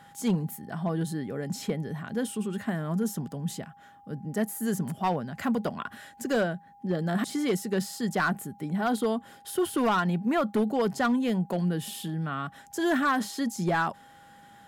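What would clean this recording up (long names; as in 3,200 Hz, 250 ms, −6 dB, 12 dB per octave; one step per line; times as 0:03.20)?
clipped peaks rebuilt −19.5 dBFS
notch filter 810 Hz, Q 30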